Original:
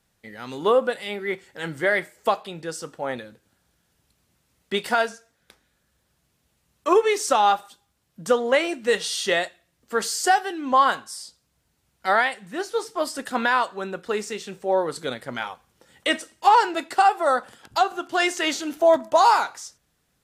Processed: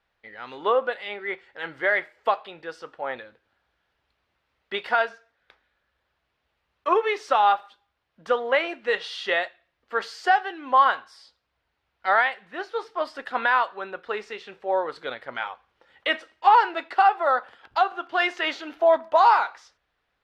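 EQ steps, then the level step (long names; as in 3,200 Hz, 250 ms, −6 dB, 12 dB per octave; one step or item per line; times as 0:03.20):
high-frequency loss of the air 340 metres
parametric band 170 Hz −13 dB 2 octaves
low-shelf EQ 420 Hz −7.5 dB
+4.0 dB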